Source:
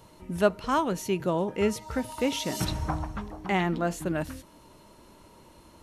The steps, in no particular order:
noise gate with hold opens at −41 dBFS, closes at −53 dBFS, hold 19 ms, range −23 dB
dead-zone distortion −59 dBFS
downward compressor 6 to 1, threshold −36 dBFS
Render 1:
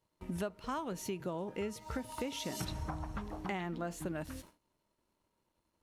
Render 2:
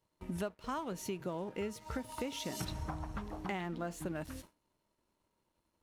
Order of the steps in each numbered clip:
dead-zone distortion, then noise gate with hold, then downward compressor
downward compressor, then dead-zone distortion, then noise gate with hold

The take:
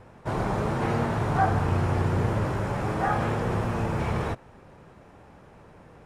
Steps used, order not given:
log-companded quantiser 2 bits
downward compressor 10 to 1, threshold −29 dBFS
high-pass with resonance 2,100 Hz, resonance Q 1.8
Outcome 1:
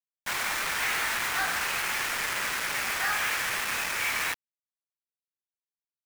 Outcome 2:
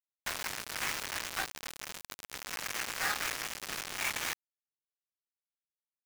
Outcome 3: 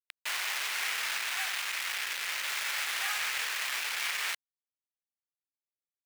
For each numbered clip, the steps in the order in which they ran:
high-pass with resonance, then downward compressor, then log-companded quantiser
downward compressor, then high-pass with resonance, then log-companded quantiser
downward compressor, then log-companded quantiser, then high-pass with resonance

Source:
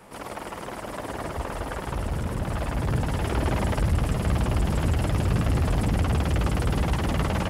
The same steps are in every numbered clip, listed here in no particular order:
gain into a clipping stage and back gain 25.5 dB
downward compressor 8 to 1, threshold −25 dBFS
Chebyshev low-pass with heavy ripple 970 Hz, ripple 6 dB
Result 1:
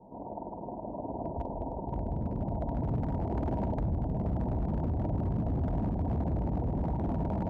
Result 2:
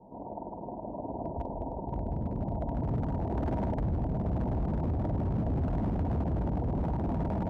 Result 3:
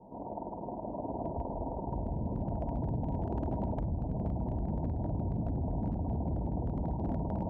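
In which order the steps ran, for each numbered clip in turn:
Chebyshev low-pass with heavy ripple, then downward compressor, then gain into a clipping stage and back
Chebyshev low-pass with heavy ripple, then gain into a clipping stage and back, then downward compressor
downward compressor, then Chebyshev low-pass with heavy ripple, then gain into a clipping stage and back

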